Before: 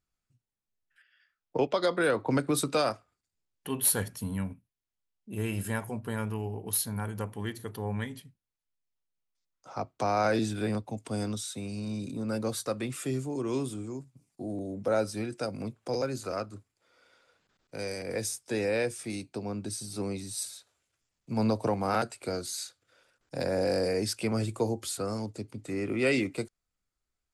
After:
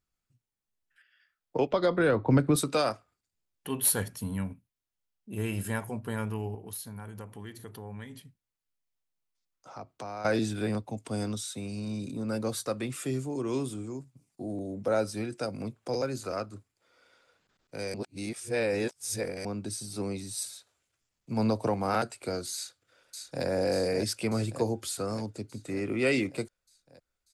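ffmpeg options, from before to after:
-filter_complex "[0:a]asettb=1/sr,asplit=3[a][b][c];[a]atrim=end=1.714[d];[b]atrim=start=1.71:end=2.56,asetpts=PTS-STARTPTS,afade=t=in:d=0.004:c=qsin,afade=t=out:st=0.846:d=0.004:c=qsin,aemphasis=mode=reproduction:type=bsi[e];[c]atrim=start=2.556[f];[d][e]acrossfade=d=0.004:c1=hsin:c2=qsin[g];[g][f]acrossfade=d=0.004:c1=qsin:c2=hsin,asettb=1/sr,asplit=3[h][i][j];[h]atrim=end=6.554[k];[i]atrim=start=6.55:end=10.25,asetpts=PTS-STARTPTS,afade=t=in:d=0.004:c=qsin,afade=t=out:st=3.696:d=0.004:c=qsin,acompressor=threshold=-44dB:ratio=2:attack=3.2:release=140:knee=1:detection=peak[l];[j]atrim=start=10.246[m];[k][l]acrossfade=d=0.004:c1=hsin:c2=qsin[n];[n][m]acrossfade=d=0.004:c1=qsin:c2=hsin,asplit=2[o][p];[p]afade=t=in:st=22.54:d=0.01,afade=t=out:st=23.45:d=0.01,aecho=0:1:590|1180|1770|2360|2950|3540|4130|4720|5310|5900:0.562341|0.365522|0.237589|0.154433|0.100381|0.0652479|0.0424112|0.0275673|0.0179187|0.0116472[q];[o][q]amix=inputs=2:normalize=0,asplit=3[r][s][t];[r]atrim=end=17.942[u];[s]atrim=start=17.938:end=19.452,asetpts=PTS-STARTPTS,areverse[v];[t]atrim=start=19.448[w];[u][v]acrossfade=d=0.004:c1=hsin:c2=hsin[x];[x][w]acrossfade=d=0.004:c1=hsin:c2=hsin"

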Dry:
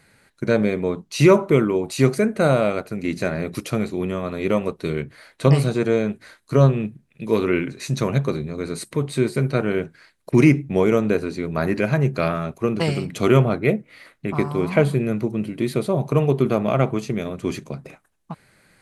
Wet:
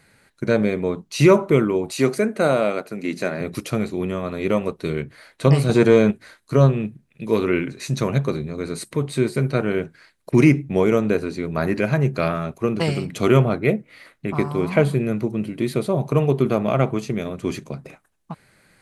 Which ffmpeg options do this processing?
-filter_complex "[0:a]asettb=1/sr,asplit=3[a][b][c];[a]atrim=end=1.924[d];[b]atrim=start=1.92:end=3.41,asetpts=PTS-STARTPTS,afade=t=in:d=0.004:c=qsin,afade=t=out:st=1.486:d=0.004:c=qsin,highpass=200[e];[c]atrim=start=3.406[f];[d][e]acrossfade=d=0.004:c1=hsin:c2=qsin[g];[g][f]acrossfade=d=0.004:c1=qsin:c2=hsin,asettb=1/sr,asplit=3[h][i][j];[h]atrim=end=5.694[k];[i]atrim=start=5.69:end=6.11,asetpts=PTS-STARTPTS,afade=t=in:d=0.004:c=qsin,afade=t=out:st=0.416:d=0.004:c=qsin,acontrast=80[l];[j]atrim=start=6.106[m];[k][l]acrossfade=d=0.004:c1=hsin:c2=qsin[n];[n][m]acrossfade=d=0.004:c1=qsin:c2=hsin"

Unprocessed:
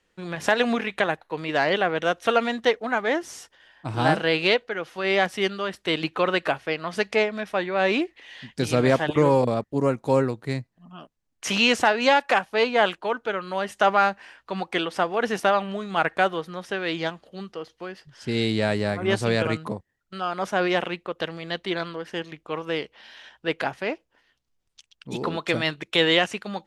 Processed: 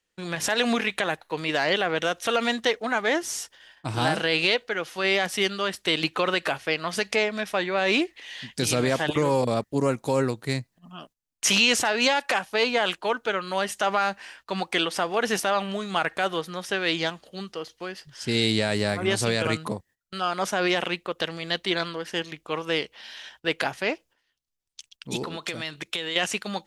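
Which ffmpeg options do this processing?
-filter_complex "[0:a]asettb=1/sr,asplit=3[a][b][c];[a]atrim=end=25.234[d];[b]atrim=start=25.23:end=26.16,asetpts=PTS-STARTPTS,afade=t=in:d=0.004:c=qsin,afade=t=out:st=0.926:d=0.004:c=qsin,acompressor=threshold=-30dB:ratio=8:attack=3.2:release=140:knee=1:detection=peak[e];[c]atrim=start=26.156[f];[d][e]acrossfade=d=0.004:c1=hsin:c2=qsin[g];[g][f]acrossfade=d=0.004:c1=qsin:c2=hsin,alimiter=limit=-13.5dB:level=0:latency=1:release=53,highshelf=f=3.2k:g=11.5,agate=range=-13dB:threshold=-51dB:ratio=16:detection=peak"

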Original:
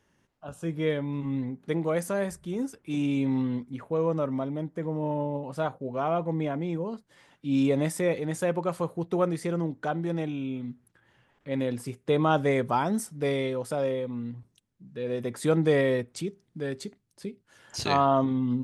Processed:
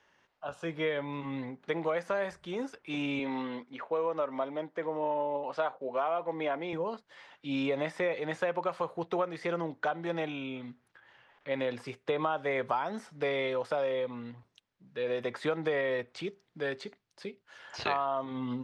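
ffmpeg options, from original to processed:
-filter_complex "[0:a]asettb=1/sr,asplit=3[a][b][c];[a]atrim=end=3.194[d];[b]atrim=start=3.19:end=6.73,asetpts=PTS-STARTPTS,afade=t=in:d=0.004:c=qsin,afade=t=out:st=3.536:d=0.004:c=qsin,highpass=230,lowpass=6.1k[e];[c]atrim=start=6.726[f];[d][e]acrossfade=d=0.004:c1=hsin:c2=qsin[g];[g][f]acrossfade=d=0.004:c1=qsin:c2=hsin,acrossover=split=3100[h][i];[i]acompressor=threshold=-48dB:ratio=4:attack=1:release=60[j];[h][j]amix=inputs=2:normalize=0,acrossover=split=500 5400:gain=0.158 1 0.0794[k][l][m];[k][l][m]amix=inputs=3:normalize=0,acompressor=threshold=-33dB:ratio=8,volume=6dB"

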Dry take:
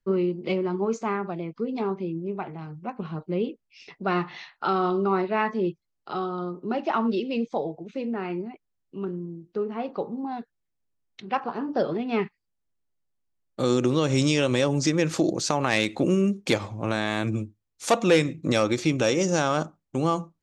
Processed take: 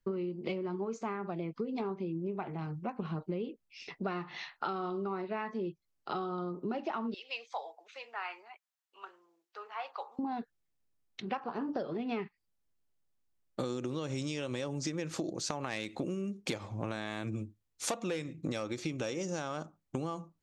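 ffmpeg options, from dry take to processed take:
-filter_complex "[0:a]asettb=1/sr,asplit=3[a][b][c];[a]atrim=end=7.144[d];[b]atrim=start=7.14:end=10.19,asetpts=PTS-STARTPTS,afade=t=in:d=0.004:c=qsin,afade=t=out:st=3.046:d=0.004:c=qsin,highpass=f=840:w=0.5412,highpass=f=840:w=1.3066[e];[c]atrim=start=10.186[f];[d][e]acrossfade=d=0.004:c1=hsin:c2=qsin[g];[g][f]acrossfade=d=0.004:c1=qsin:c2=hsin,acompressor=threshold=-32dB:ratio=16"

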